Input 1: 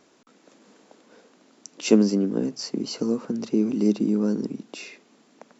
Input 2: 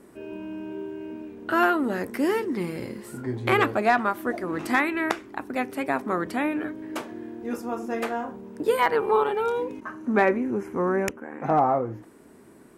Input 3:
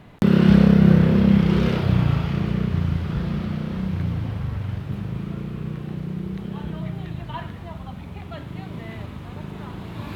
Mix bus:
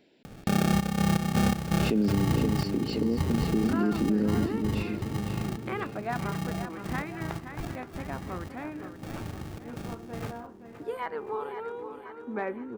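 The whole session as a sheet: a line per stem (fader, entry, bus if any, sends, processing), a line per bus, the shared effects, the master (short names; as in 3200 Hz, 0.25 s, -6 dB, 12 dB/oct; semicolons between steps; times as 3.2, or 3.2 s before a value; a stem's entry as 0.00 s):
-1.0 dB, 0.00 s, no send, echo send -9.5 dB, fixed phaser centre 2800 Hz, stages 4
-12.0 dB, 2.20 s, no send, echo send -9 dB, high shelf 3400 Hz -9 dB
-4.0 dB, 0.25 s, no send, echo send -18 dB, upward compressor, threshold -35 dBFS; sample-rate reducer 1000 Hz, jitter 0%; step gate "xxx.x.x.x.xxx..." 82 bpm -12 dB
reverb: off
echo: feedback echo 0.521 s, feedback 52%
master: limiter -17 dBFS, peak gain reduction 11.5 dB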